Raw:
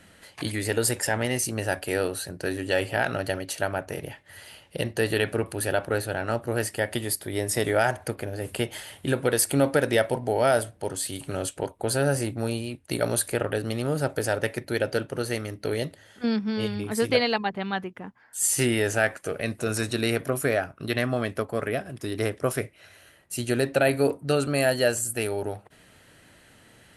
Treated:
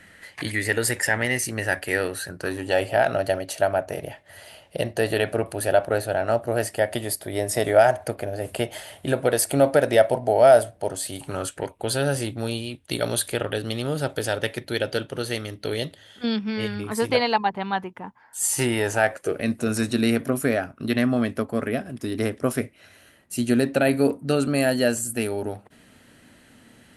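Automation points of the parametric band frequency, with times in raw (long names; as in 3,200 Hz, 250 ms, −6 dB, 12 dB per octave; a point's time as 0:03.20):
parametric band +10.5 dB 0.5 octaves
0:02.15 1,900 Hz
0:02.82 650 Hz
0:11.13 650 Hz
0:11.90 3,400 Hz
0:16.33 3,400 Hz
0:17.02 910 Hz
0:19.00 910 Hz
0:19.44 240 Hz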